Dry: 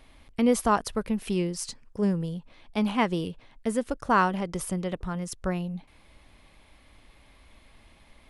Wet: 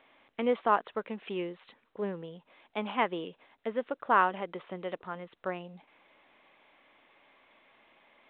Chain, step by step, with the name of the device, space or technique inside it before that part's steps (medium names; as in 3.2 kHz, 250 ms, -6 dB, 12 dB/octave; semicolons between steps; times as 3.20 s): telephone (band-pass 400–3200 Hz; trim -1.5 dB; µ-law 64 kbps 8 kHz)